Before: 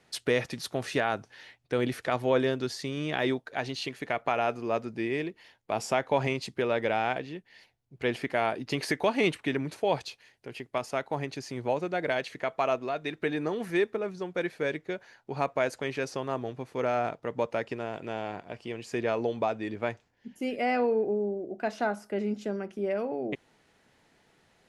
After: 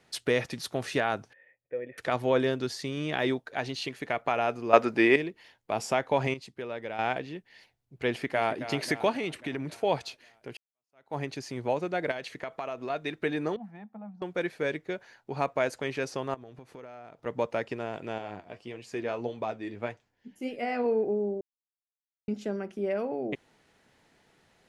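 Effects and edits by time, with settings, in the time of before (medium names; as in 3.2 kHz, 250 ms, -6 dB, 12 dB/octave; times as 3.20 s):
1.33–1.98 s: cascade formant filter e
4.73–5.16 s: FFT filter 170 Hz 0 dB, 270 Hz +8 dB, 1.4 kHz +15 dB, 6.3 kHz +8 dB
6.34–6.99 s: gain -9 dB
8.08–8.62 s: echo throw 270 ms, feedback 60%, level -11.5 dB
9.15–9.77 s: compression 3:1, threshold -30 dBFS
10.57–11.16 s: fade in exponential
12.11–12.90 s: compression, threshold -31 dBFS
13.56–14.22 s: two resonant band-passes 400 Hz, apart 1.9 oct
16.34–17.26 s: compression, threshold -43 dBFS
18.18–20.86 s: flange 1.7 Hz, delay 6 ms, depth 6.9 ms, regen +56%
21.41–22.28 s: mute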